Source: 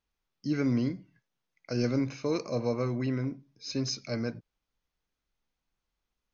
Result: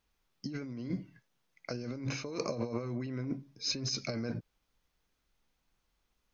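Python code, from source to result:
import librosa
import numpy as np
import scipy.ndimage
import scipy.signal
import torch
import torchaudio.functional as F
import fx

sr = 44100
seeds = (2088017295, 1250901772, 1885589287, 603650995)

y = fx.over_compress(x, sr, threshold_db=-37.0, ratio=-1.0)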